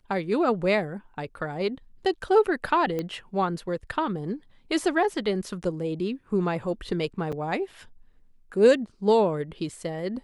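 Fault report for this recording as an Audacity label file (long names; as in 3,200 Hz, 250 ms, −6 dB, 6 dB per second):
2.990000	2.990000	click −17 dBFS
7.320000	7.330000	drop-out 6.1 ms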